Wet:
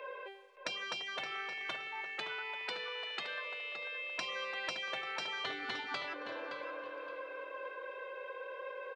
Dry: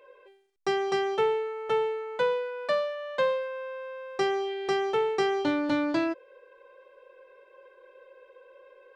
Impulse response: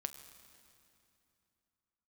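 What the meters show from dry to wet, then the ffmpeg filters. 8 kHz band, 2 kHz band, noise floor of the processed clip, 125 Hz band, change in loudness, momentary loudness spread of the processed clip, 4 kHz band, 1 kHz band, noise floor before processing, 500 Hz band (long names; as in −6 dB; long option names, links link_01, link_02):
can't be measured, −2.0 dB, −48 dBFS, −14.5 dB, −11.5 dB, 7 LU, −0.5 dB, −11.0 dB, −58 dBFS, −17.5 dB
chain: -filter_complex "[0:a]acompressor=threshold=-34dB:ratio=20,acrossover=split=510 4100:gain=0.141 1 0.251[link_01][link_02][link_03];[link_01][link_02][link_03]amix=inputs=3:normalize=0,asplit=2[link_04][link_05];[link_05]aecho=0:1:344|688|1032|1376:0.112|0.0561|0.0281|0.014[link_06];[link_04][link_06]amix=inputs=2:normalize=0,afftfilt=real='re*lt(hypot(re,im),0.02)':imag='im*lt(hypot(re,im),0.02)':win_size=1024:overlap=0.75,asplit=2[link_07][link_08];[link_08]adelay=569,lowpass=frequency=4700:poles=1,volume=-8dB,asplit=2[link_09][link_10];[link_10]adelay=569,lowpass=frequency=4700:poles=1,volume=0.27,asplit=2[link_11][link_12];[link_12]adelay=569,lowpass=frequency=4700:poles=1,volume=0.27[link_13];[link_09][link_11][link_13]amix=inputs=3:normalize=0[link_14];[link_07][link_14]amix=inputs=2:normalize=0,volume=12.5dB"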